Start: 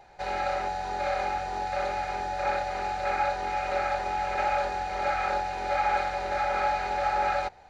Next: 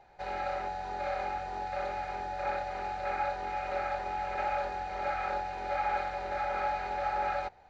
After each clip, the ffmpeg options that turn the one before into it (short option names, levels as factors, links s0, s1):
-af "lowpass=f=3500:p=1,volume=0.562"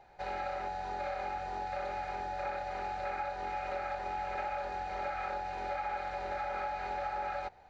-af "acompressor=threshold=0.0224:ratio=6"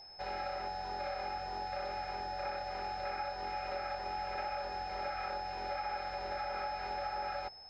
-af "aeval=exprs='val(0)+0.00355*sin(2*PI*5200*n/s)':c=same,volume=0.794"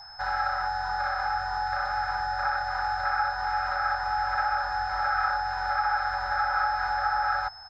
-af "firequalizer=gain_entry='entry(130,0);entry(200,-17);entry(380,-22);entry(800,2);entry(1500,12);entry(2400,-13);entry(3700,-4);entry(6300,-1)':delay=0.05:min_phase=1,volume=2.82"